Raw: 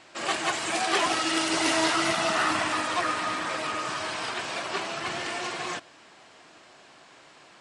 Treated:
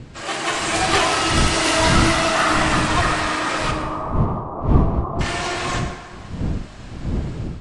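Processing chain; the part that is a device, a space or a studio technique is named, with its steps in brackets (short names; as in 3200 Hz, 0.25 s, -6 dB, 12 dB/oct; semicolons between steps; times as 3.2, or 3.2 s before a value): 3.71–5.21 Chebyshev low-pass 1200 Hz, order 6; plate-style reverb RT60 1.7 s, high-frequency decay 0.55×, DRR 2.5 dB; smartphone video outdoors (wind noise 160 Hz -29 dBFS; AGC gain up to 6.5 dB; AAC 64 kbps 32000 Hz)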